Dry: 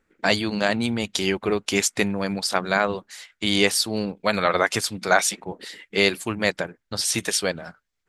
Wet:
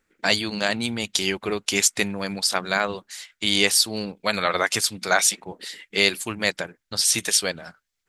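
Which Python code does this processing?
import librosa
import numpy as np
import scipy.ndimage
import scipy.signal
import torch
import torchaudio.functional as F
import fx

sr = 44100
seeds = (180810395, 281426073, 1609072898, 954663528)

y = fx.high_shelf(x, sr, hz=2100.0, db=9.0)
y = y * 10.0 ** (-4.0 / 20.0)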